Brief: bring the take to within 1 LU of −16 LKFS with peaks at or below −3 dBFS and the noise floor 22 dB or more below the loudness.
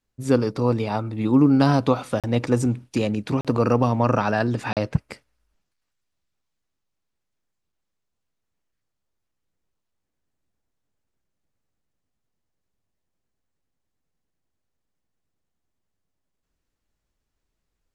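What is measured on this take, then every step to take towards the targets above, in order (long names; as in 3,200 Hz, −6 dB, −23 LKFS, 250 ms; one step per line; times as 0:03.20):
number of dropouts 3; longest dropout 37 ms; integrated loudness −22.0 LKFS; sample peak −4.5 dBFS; target loudness −16.0 LKFS
→ repair the gap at 0:02.20/0:03.41/0:04.73, 37 ms
level +6 dB
brickwall limiter −3 dBFS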